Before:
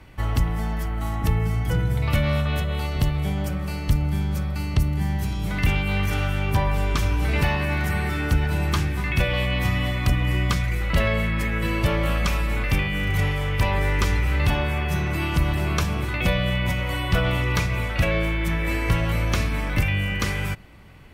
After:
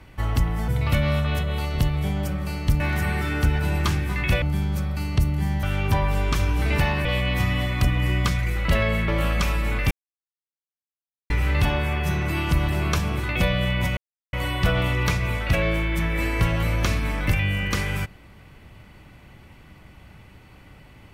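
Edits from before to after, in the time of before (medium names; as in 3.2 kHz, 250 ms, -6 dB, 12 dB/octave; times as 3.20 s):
0.68–1.89 s: delete
5.22–6.26 s: delete
7.68–9.30 s: move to 4.01 s
11.33–11.93 s: delete
12.76–14.15 s: mute
16.82 s: insert silence 0.36 s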